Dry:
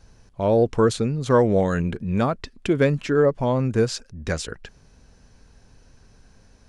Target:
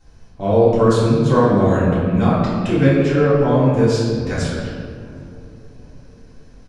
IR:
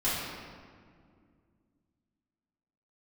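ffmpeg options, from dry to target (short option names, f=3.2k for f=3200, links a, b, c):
-filter_complex "[0:a]asplit=2[a][b];[b]adelay=767,lowpass=f=930:p=1,volume=-21.5dB,asplit=2[c][d];[d]adelay=767,lowpass=f=930:p=1,volume=0.5,asplit=2[e][f];[f]adelay=767,lowpass=f=930:p=1,volume=0.5,asplit=2[g][h];[h]adelay=767,lowpass=f=930:p=1,volume=0.5[i];[a][c][e][g][i]amix=inputs=5:normalize=0[j];[1:a]atrim=start_sample=2205[k];[j][k]afir=irnorm=-1:irlink=0,volume=-5.5dB"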